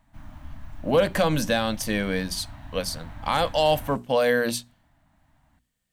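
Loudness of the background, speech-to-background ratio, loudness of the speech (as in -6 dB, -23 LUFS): -43.5 LUFS, 18.5 dB, -25.0 LUFS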